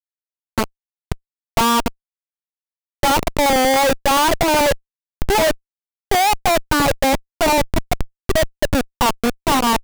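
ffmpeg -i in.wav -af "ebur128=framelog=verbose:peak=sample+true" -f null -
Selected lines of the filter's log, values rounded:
Integrated loudness:
  I:         -18.0 LUFS
  Threshold: -28.4 LUFS
Loudness range:
  LRA:         3.6 LU
  Threshold: -38.5 LUFS
  LRA low:   -20.9 LUFS
  LRA high:  -17.3 LUFS
Sample peak:
  Peak:       -8.4 dBFS
True peak:
  Peak:       -7.3 dBFS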